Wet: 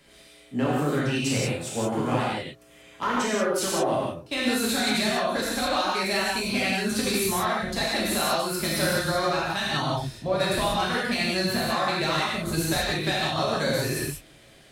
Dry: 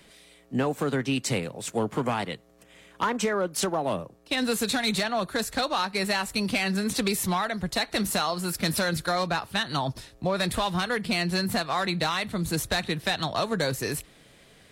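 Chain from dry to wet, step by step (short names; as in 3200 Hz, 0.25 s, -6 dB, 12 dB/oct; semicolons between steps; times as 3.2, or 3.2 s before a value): non-linear reverb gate 0.21 s flat, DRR -6.5 dB; gain -5 dB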